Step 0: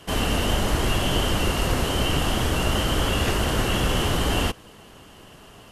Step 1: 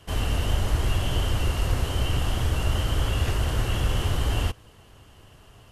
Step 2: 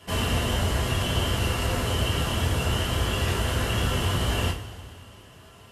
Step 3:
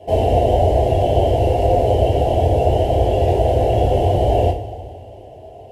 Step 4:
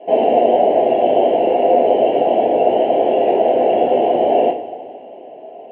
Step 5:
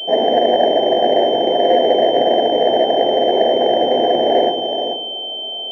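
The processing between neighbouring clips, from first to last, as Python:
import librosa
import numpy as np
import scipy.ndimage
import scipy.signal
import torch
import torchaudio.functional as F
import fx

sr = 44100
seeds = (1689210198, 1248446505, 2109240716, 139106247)

y1 = fx.low_shelf_res(x, sr, hz=140.0, db=7.5, q=1.5)
y1 = y1 * 10.0 ** (-7.0 / 20.0)
y2 = scipy.signal.sosfilt(scipy.signal.butter(2, 74.0, 'highpass', fs=sr, output='sos'), y1)
y2 = fx.rider(y2, sr, range_db=10, speed_s=0.5)
y2 = fx.rev_double_slope(y2, sr, seeds[0], early_s=0.28, late_s=2.5, knee_db=-19, drr_db=-2.0)
y3 = fx.curve_eq(y2, sr, hz=(110.0, 200.0, 320.0, 750.0, 1200.0, 2200.0, 7500.0), db=(0, -10, 3, 13, -30, -13, -18))
y3 = y3 * 10.0 ** (8.0 / 20.0)
y4 = scipy.signal.sosfilt(scipy.signal.ellip(3, 1.0, 40, [220.0, 2700.0], 'bandpass', fs=sr, output='sos'), y3)
y4 = y4 * 10.0 ** (4.0 / 20.0)
y5 = y4 + 10.0 ** (-7.0 / 20.0) * np.pad(y4, (int(430 * sr / 1000.0), 0))[:len(y4)]
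y5 = fx.pwm(y5, sr, carrier_hz=3100.0)
y5 = y5 * 10.0 ** (-1.0 / 20.0)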